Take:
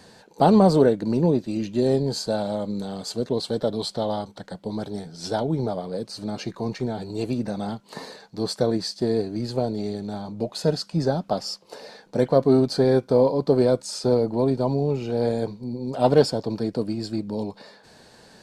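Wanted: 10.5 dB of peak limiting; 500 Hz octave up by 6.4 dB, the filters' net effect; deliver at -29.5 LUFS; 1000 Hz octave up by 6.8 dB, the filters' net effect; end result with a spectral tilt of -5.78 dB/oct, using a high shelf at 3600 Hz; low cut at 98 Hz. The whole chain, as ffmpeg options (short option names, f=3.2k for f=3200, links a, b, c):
-af "highpass=98,equalizer=f=500:t=o:g=6,equalizer=f=1k:t=o:g=6.5,highshelf=f=3.6k:g=3,volume=-7.5dB,alimiter=limit=-17dB:level=0:latency=1"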